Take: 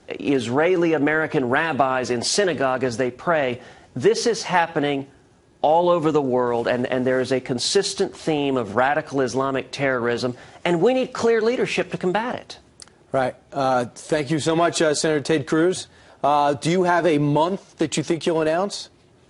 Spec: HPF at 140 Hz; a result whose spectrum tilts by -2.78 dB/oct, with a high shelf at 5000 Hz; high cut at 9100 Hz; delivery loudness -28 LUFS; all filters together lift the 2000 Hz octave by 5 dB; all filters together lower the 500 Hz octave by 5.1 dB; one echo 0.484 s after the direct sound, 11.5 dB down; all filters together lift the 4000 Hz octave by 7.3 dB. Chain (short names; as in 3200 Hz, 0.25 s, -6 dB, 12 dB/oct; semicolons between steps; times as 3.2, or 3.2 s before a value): HPF 140 Hz; LPF 9100 Hz; bell 500 Hz -7 dB; bell 2000 Hz +5 dB; bell 4000 Hz +5.5 dB; high shelf 5000 Hz +5 dB; echo 0.484 s -11.5 dB; gain -7 dB